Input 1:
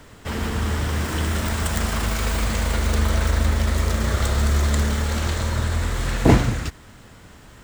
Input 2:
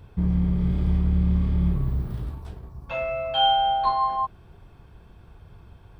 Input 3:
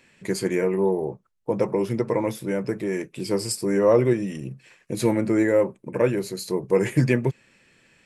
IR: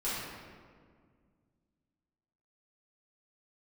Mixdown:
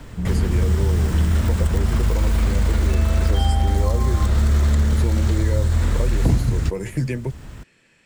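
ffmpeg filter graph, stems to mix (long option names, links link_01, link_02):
-filter_complex "[0:a]lowshelf=frequency=250:gain=11.5,volume=0.5dB[link_01];[1:a]volume=-1.5dB[link_02];[2:a]volume=0dB[link_03];[link_01][link_02][link_03]amix=inputs=3:normalize=0,acrossover=split=160|4300[link_04][link_05][link_06];[link_04]acompressor=threshold=-16dB:ratio=4[link_07];[link_05]acompressor=threshold=-27dB:ratio=4[link_08];[link_06]acompressor=threshold=-40dB:ratio=4[link_09];[link_07][link_08][link_09]amix=inputs=3:normalize=0"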